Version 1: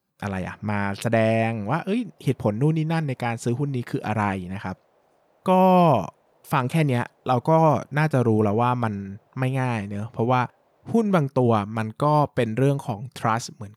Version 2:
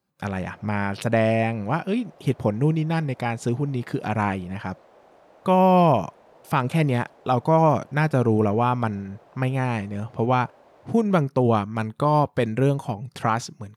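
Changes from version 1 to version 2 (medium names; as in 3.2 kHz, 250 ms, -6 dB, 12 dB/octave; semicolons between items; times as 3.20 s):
background +9.5 dB; master: add treble shelf 11 kHz -7 dB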